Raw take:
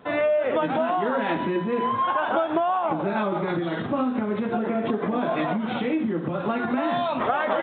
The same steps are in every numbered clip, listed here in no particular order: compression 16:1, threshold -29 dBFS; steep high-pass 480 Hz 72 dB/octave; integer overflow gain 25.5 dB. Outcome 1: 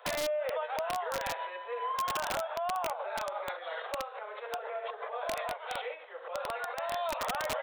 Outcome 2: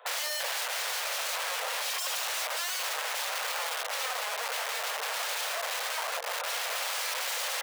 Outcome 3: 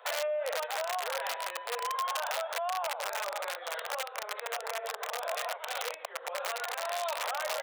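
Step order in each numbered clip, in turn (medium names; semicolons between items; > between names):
compression > steep high-pass > integer overflow; integer overflow > compression > steep high-pass; compression > integer overflow > steep high-pass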